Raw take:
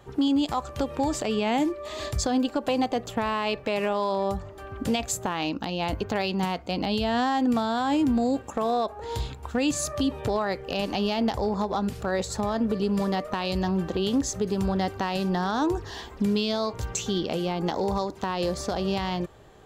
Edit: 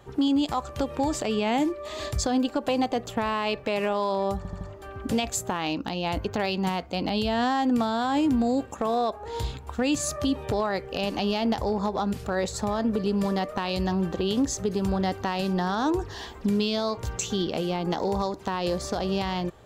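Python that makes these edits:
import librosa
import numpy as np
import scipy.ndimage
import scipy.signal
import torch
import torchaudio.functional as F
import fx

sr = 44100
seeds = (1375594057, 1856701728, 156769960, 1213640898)

y = fx.edit(x, sr, fx.stutter(start_s=4.37, slice_s=0.08, count=4), tone=tone)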